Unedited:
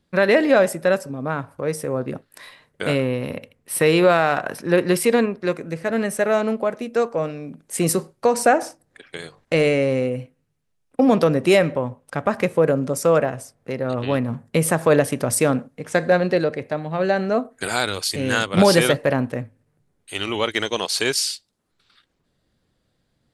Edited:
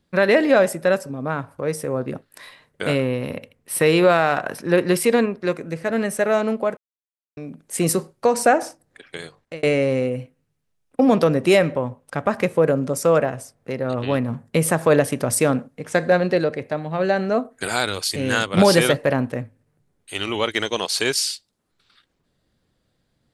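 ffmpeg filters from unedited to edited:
ffmpeg -i in.wav -filter_complex "[0:a]asplit=4[link_01][link_02][link_03][link_04];[link_01]atrim=end=6.77,asetpts=PTS-STARTPTS,afade=type=out:start_time=6.766:duration=0.004:curve=hsin[link_05];[link_02]atrim=start=6.77:end=7.37,asetpts=PTS-STARTPTS,volume=0[link_06];[link_03]atrim=start=7.37:end=9.63,asetpts=PTS-STARTPTS,afade=type=in:duration=0.004:curve=hsin,afade=type=out:start_time=1.86:duration=0.4[link_07];[link_04]atrim=start=9.63,asetpts=PTS-STARTPTS,afade=type=in:duration=0.004:curve=hsin[link_08];[link_05][link_06][link_07][link_08]concat=n=4:v=0:a=1" out.wav

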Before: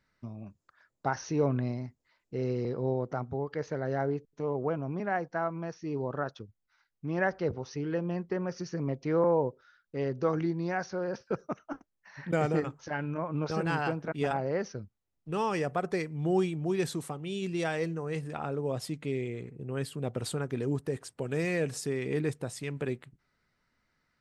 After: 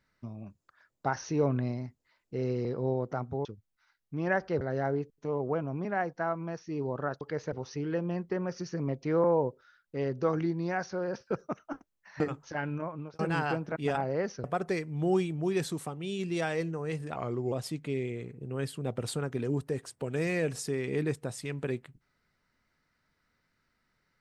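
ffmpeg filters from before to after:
ffmpeg -i in.wav -filter_complex "[0:a]asplit=10[link_01][link_02][link_03][link_04][link_05][link_06][link_07][link_08][link_09][link_10];[link_01]atrim=end=3.452[link_11];[link_02]atrim=start=6.358:end=7.522[link_12];[link_03]atrim=start=3.758:end=6.362[link_13];[link_04]atrim=start=3.448:end=3.762[link_14];[link_05]atrim=start=7.518:end=12.202[link_15];[link_06]atrim=start=12.558:end=13.55,asetpts=PTS-STARTPTS,afade=type=out:start_time=0.542:duration=0.45[link_16];[link_07]atrim=start=13.55:end=14.802,asetpts=PTS-STARTPTS,afade=type=in:duration=0.004:curve=hsin[link_17];[link_08]atrim=start=15.668:end=18.394[link_18];[link_09]atrim=start=18.39:end=18.7,asetpts=PTS-STARTPTS,asetrate=37926,aresample=44100[link_19];[link_10]atrim=start=18.696[link_20];[link_11][link_12]acrossfade=duration=0.004:curve1=hsin:curve2=hsin[link_21];[link_21][link_13]acrossfade=duration=0.004:curve1=hsin:curve2=hsin[link_22];[link_22][link_14]acrossfade=duration=0.004:curve1=hsin:curve2=hsin[link_23];[link_23][link_15]acrossfade=duration=0.004:curve1=hsin:curve2=hsin[link_24];[link_16][link_17]concat=n=2:v=0:a=1[link_25];[link_24][link_25]acrossfade=duration=0.004:curve1=hsin:curve2=hsin[link_26];[link_26][link_18]acrossfade=duration=0.004:curve1=hsin:curve2=hsin[link_27];[link_27][link_19]acrossfade=duration=0.004:curve1=hsin:curve2=hsin[link_28];[link_28][link_20]acrossfade=duration=0.004:curve1=hsin:curve2=hsin" out.wav

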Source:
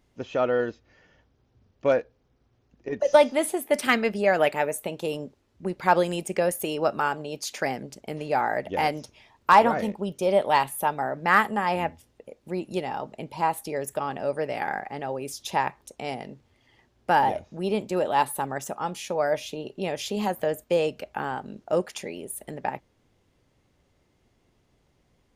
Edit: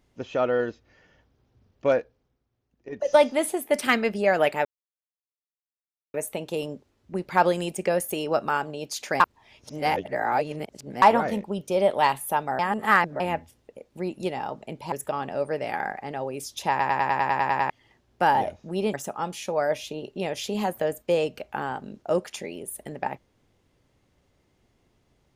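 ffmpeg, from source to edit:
ffmpeg -i in.wav -filter_complex "[0:a]asplit=20[link_01][link_02][link_03][link_04][link_05][link_06][link_07][link_08][link_09][link_10][link_11][link_12][link_13][link_14][link_15][link_16][link_17][link_18][link_19][link_20];[link_01]atrim=end=2.44,asetpts=PTS-STARTPTS,afade=type=out:start_time=1.97:duration=0.47:silence=0.281838[link_21];[link_02]atrim=start=2.44:end=2.76,asetpts=PTS-STARTPTS,volume=-11dB[link_22];[link_03]atrim=start=2.76:end=4.65,asetpts=PTS-STARTPTS,afade=type=in:duration=0.47:silence=0.281838,afade=type=out:start_time=1.886:duration=0.004:curve=hsin,apad=pad_dur=1.49[link_23];[link_04]atrim=start=4.65:end=7.712,asetpts=PTS-STARTPTS,afade=type=in:duration=0.004:curve=hsin[link_24];[link_05]atrim=start=7.708:end=9.532,asetpts=PTS-STARTPTS,areverse[link_25];[link_06]atrim=start=9.528:end=11.102[link_26];[link_07]atrim=start=11.098:end=11.712,asetpts=PTS-STARTPTS,areverse[link_27];[link_08]atrim=start=11.708:end=13.432[link_28];[link_09]atrim=start=13.798:end=15.682[link_29];[link_10]atrim=start=15.578:end=15.682[link_30];[link_11]atrim=start=15.578:end=15.682[link_31];[link_12]atrim=start=15.578:end=15.682[link_32];[link_13]atrim=start=15.578:end=15.682[link_33];[link_14]atrim=start=15.578:end=15.682[link_34];[link_15]atrim=start=15.578:end=15.682[link_35];[link_16]atrim=start=15.578:end=15.682[link_36];[link_17]atrim=start=15.578:end=15.682[link_37];[link_18]atrim=start=15.578:end=15.682[link_38];[link_19]atrim=start=16.578:end=17.822[link_39];[link_20]atrim=start=18.558[link_40];[link_21][link_22][link_23][link_24]concat=n=4:v=0:a=1[link_41];[link_41][link_25]acrossfade=duration=0.004:curve1=hsin:curve2=hsin[link_42];[link_42][link_26]acrossfade=duration=0.004:curve1=hsin:curve2=hsin[link_43];[link_43][link_27]acrossfade=duration=0.004:curve1=hsin:curve2=hsin[link_44];[link_44][link_28]acrossfade=duration=0.004:curve1=hsin:curve2=hsin[link_45];[link_45][link_29]acrossfade=duration=0.004:curve1=hsin:curve2=hsin[link_46];[link_46][link_30]acrossfade=duration=0.004:curve1=hsin:curve2=hsin[link_47];[link_47][link_31]acrossfade=duration=0.004:curve1=hsin:curve2=hsin[link_48];[link_48][link_32]acrossfade=duration=0.004:curve1=hsin:curve2=hsin[link_49];[link_49][link_33]acrossfade=duration=0.004:curve1=hsin:curve2=hsin[link_50];[link_50][link_34]acrossfade=duration=0.004:curve1=hsin:curve2=hsin[link_51];[link_51][link_35]acrossfade=duration=0.004:curve1=hsin:curve2=hsin[link_52];[link_52][link_36]acrossfade=duration=0.004:curve1=hsin:curve2=hsin[link_53];[link_53][link_37]acrossfade=duration=0.004:curve1=hsin:curve2=hsin[link_54];[link_54][link_38]acrossfade=duration=0.004:curve1=hsin:curve2=hsin[link_55];[link_55][link_39]acrossfade=duration=0.004:curve1=hsin:curve2=hsin[link_56];[link_56][link_40]acrossfade=duration=0.004:curve1=hsin:curve2=hsin" out.wav

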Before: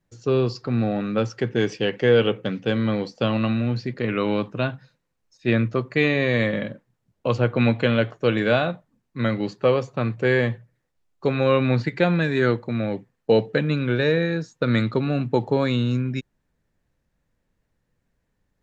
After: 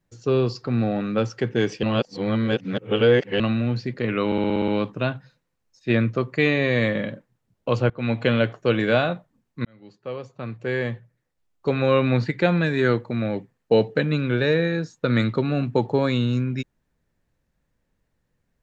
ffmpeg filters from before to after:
ffmpeg -i in.wav -filter_complex "[0:a]asplit=12[link_01][link_02][link_03][link_04][link_05][link_06][link_07][link_08][link_09][link_10][link_11][link_12];[link_01]atrim=end=1.832[link_13];[link_02]atrim=start=1.828:end=3.402,asetpts=PTS-STARTPTS,areverse[link_14];[link_03]atrim=start=3.398:end=4.322[link_15];[link_04]atrim=start=4.258:end=4.322[link_16];[link_05]atrim=start=4.258:end=4.322[link_17];[link_06]atrim=start=4.258:end=4.322[link_18];[link_07]atrim=start=4.258:end=4.322[link_19];[link_08]atrim=start=4.258:end=4.322[link_20];[link_09]atrim=start=4.258:end=4.322[link_21];[link_10]atrim=start=4.258:end=7.48,asetpts=PTS-STARTPTS,afade=type=out:start_time=3.218:duration=0.004:curve=hsin:silence=0.1[link_22];[link_11]atrim=start=7.48:end=9.23,asetpts=PTS-STARTPTS,afade=type=in:duration=0.36:silence=0.1,afade=type=out:start_time=1.746:duration=0.004:curve=hsin[link_23];[link_12]atrim=start=9.23,asetpts=PTS-STARTPTS,afade=type=in:duration=2.13[link_24];[link_13][link_14]acrossfade=duration=0.004:curve1=hsin:curve2=hsin[link_25];[link_25][link_15]acrossfade=duration=0.004:curve1=hsin:curve2=hsin[link_26];[link_26][link_16]acrossfade=duration=0.004:curve1=hsin:curve2=hsin[link_27];[link_27][link_17]acrossfade=duration=0.004:curve1=hsin:curve2=hsin[link_28];[link_28][link_18]acrossfade=duration=0.004:curve1=hsin:curve2=hsin[link_29];[link_29][link_19]acrossfade=duration=0.004:curve1=hsin:curve2=hsin[link_30];[link_30][link_20]acrossfade=duration=0.004:curve1=hsin:curve2=hsin[link_31];[link_31][link_21]acrossfade=duration=0.004:curve1=hsin:curve2=hsin[link_32];[link_22][link_23][link_24]concat=n=3:v=0:a=1[link_33];[link_32][link_33]acrossfade=duration=0.004:curve1=hsin:curve2=hsin" out.wav

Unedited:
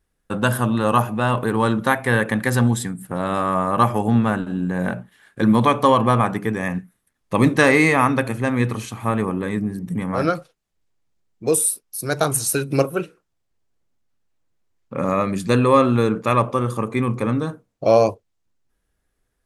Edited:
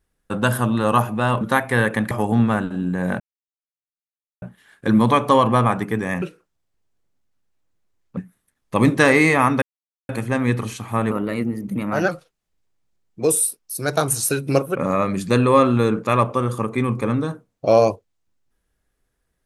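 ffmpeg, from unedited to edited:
ffmpeg -i in.wav -filter_complex "[0:a]asplit=10[link_01][link_02][link_03][link_04][link_05][link_06][link_07][link_08][link_09][link_10];[link_01]atrim=end=1.412[link_11];[link_02]atrim=start=1.758:end=2.462[link_12];[link_03]atrim=start=3.868:end=4.96,asetpts=PTS-STARTPTS,afade=type=out:start_time=1.088:duration=0.004:curve=hsin,apad=pad_dur=1.22[link_13];[link_04]atrim=start=4.96:end=6.762,asetpts=PTS-STARTPTS,afade=type=in:duration=0.004:curve=hsin[link_14];[link_05]atrim=start=12.988:end=14.942[link_15];[link_06]atrim=start=6.758:end=8.21,asetpts=PTS-STARTPTS,afade=type=out:start_time=1.448:duration=0.004:curve=hsin,apad=pad_dur=0.47[link_16];[link_07]atrim=start=8.21:end=9.234,asetpts=PTS-STARTPTS,afade=type=in:duration=0.004:curve=hsin[link_17];[link_08]atrim=start=9.23:end=10.32,asetpts=PTS-STARTPTS,asetrate=49392,aresample=44100[link_18];[link_09]atrim=start=10.316:end=12.992[link_19];[link_10]atrim=start=14.938[link_20];[link_11][link_12]acrossfade=duration=0.004:curve1=hsin:curve2=hsin[link_21];[link_13][link_14]concat=n=2:v=0:a=1[link_22];[link_21][link_22]acrossfade=duration=0.004:curve1=hsin:curve2=hsin[link_23];[link_23][link_15]acrossfade=duration=0.004:curve1=hsin:curve2=hsin[link_24];[link_16][link_17]concat=n=2:v=0:a=1[link_25];[link_24][link_25]acrossfade=duration=0.004:curve1=hsin:curve2=hsin[link_26];[link_26][link_18]acrossfade=duration=0.004:curve1=hsin:curve2=hsin[link_27];[link_27][link_19]acrossfade=duration=0.004:curve1=hsin:curve2=hsin[link_28];[link_28][link_20]acrossfade=duration=0.004:curve1=hsin:curve2=hsin" out.wav

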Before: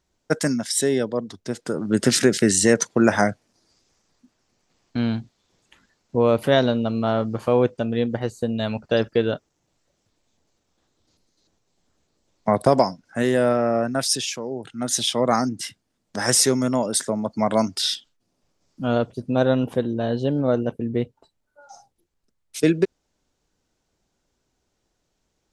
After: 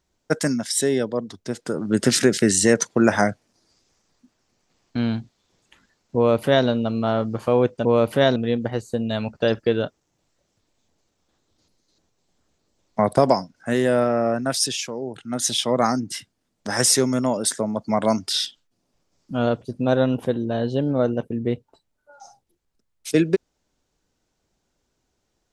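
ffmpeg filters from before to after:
ffmpeg -i in.wav -filter_complex "[0:a]asplit=3[link_01][link_02][link_03];[link_01]atrim=end=7.852[link_04];[link_02]atrim=start=6.158:end=6.672[link_05];[link_03]atrim=start=7.848[link_06];[link_04][link_05]acrossfade=duration=0.004:curve1=hsin:curve2=hsin[link_07];[link_07][link_06]acrossfade=duration=0.004:curve1=hsin:curve2=hsin" out.wav

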